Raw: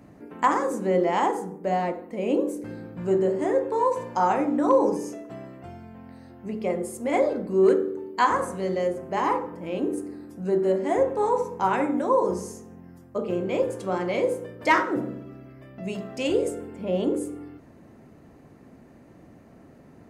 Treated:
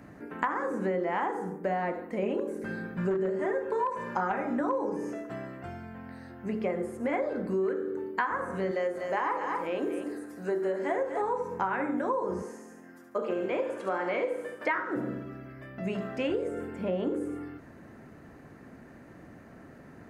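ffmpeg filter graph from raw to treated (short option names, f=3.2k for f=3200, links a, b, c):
-filter_complex "[0:a]asettb=1/sr,asplit=3[a][b][c];[a]atrim=end=2.224[d];[b]atrim=start=2.22:end=4.61,asetpts=PTS-STARTPTS,afade=t=in:d=0.004:c=qsin,afade=t=out:st=2.386:d=0.004:c=qsin,aecho=1:1:5:0.62,atrim=end_sample=105399,volume=13dB,asoftclip=hard,volume=-13dB[e];[c]atrim=start=4.606[f];[d][e]acrossfade=d=0.004:c1=hsin:c2=qsin[g];[g][f]acrossfade=d=0.004:c1=qsin:c2=hsin,asettb=1/sr,asplit=3[h][i][j];[h]atrim=end=8.714[k];[i]atrim=start=8.71:end=11.22,asetpts=PTS-STARTPTS,afade=t=in:d=0.004:c=qsin,afade=t=out:st=2.506:d=0.004:c=qsin,bass=f=250:g=-13,treble=f=4k:g=7,aecho=1:1:242:0.376,atrim=end_sample=110691[l];[j]atrim=start=11.216[m];[k][l]acrossfade=d=0.004:c1=hsin:c2=qsin[n];[n][m]acrossfade=d=0.004:c1=qsin:c2=hsin,asettb=1/sr,asplit=3[o][p][q];[o]atrim=end=12.424[r];[p]atrim=start=12.42:end=14.75,asetpts=PTS-STARTPTS,afade=t=in:d=0.004:c=qsin,afade=t=out:st=2.326:d=0.004:c=qsin,highpass=300,aecho=1:1:72|144|216|288|360:0.422|0.177|0.0744|0.0312|0.0131,atrim=end_sample=102753[s];[q]atrim=start=14.746[t];[r][s]acrossfade=d=0.004:c1=hsin:c2=qsin[u];[u][t]acrossfade=d=0.004:c1=qsin:c2=hsin,acrossover=split=2900[v][w];[w]acompressor=threshold=-57dB:ratio=4:attack=1:release=60[x];[v][x]amix=inputs=2:normalize=0,equalizer=f=1.6k:w=1.9:g=9,acompressor=threshold=-26dB:ratio=10"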